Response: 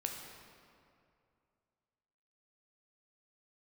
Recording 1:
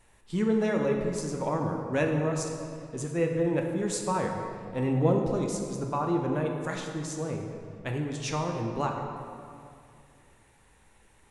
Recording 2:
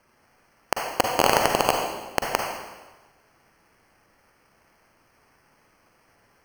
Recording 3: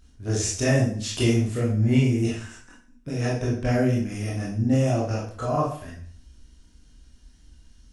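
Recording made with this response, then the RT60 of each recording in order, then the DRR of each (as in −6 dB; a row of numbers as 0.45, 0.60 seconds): 1; 2.5, 1.2, 0.50 seconds; 1.5, 1.0, −6.0 decibels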